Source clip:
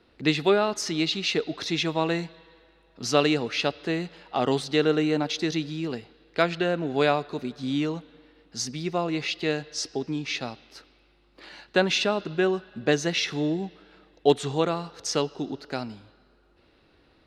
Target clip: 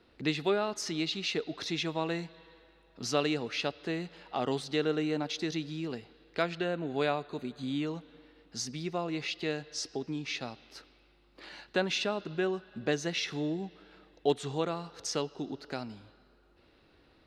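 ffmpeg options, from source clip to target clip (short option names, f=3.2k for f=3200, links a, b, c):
-filter_complex "[0:a]asplit=2[a][b];[b]acompressor=threshold=-36dB:ratio=6,volume=1dB[c];[a][c]amix=inputs=2:normalize=0,asettb=1/sr,asplit=3[d][e][f];[d]atrim=end=6.654[g];[e]atrim=start=6.65:end=7.87,asetpts=PTS-STARTPTS,afade=t=in:d=0.004:c=qsin,afade=t=out:st=1.216:d=0.004:c=qsin,asuperstop=centerf=5400:order=8:qfactor=4.1[h];[f]atrim=start=7.866[i];[g][h]acrossfade=d=0.004:c1=hsin:c2=qsin[j];[j][i]acrossfade=d=0.004:c1=qsin:c2=hsin,volume=-9dB"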